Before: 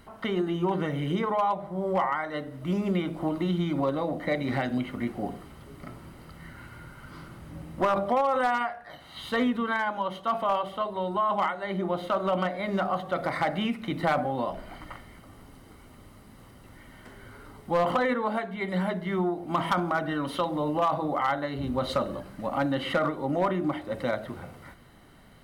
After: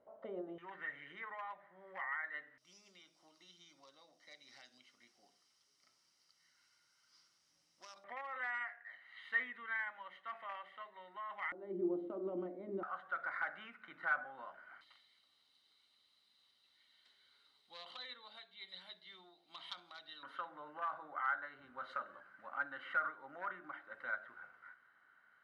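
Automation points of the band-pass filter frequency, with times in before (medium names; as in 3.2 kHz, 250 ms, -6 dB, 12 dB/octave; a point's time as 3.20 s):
band-pass filter, Q 7.7
570 Hz
from 0.58 s 1.8 kHz
from 2.58 s 5.5 kHz
from 8.04 s 1.9 kHz
from 11.52 s 340 Hz
from 12.83 s 1.5 kHz
from 14.81 s 3.9 kHz
from 20.23 s 1.5 kHz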